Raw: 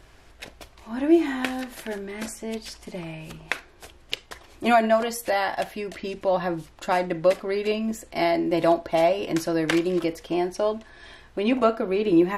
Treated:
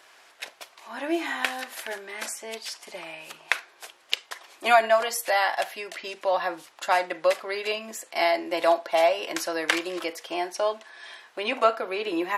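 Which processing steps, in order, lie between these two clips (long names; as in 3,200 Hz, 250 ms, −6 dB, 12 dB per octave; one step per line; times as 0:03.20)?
high-pass filter 730 Hz 12 dB per octave
level +3.5 dB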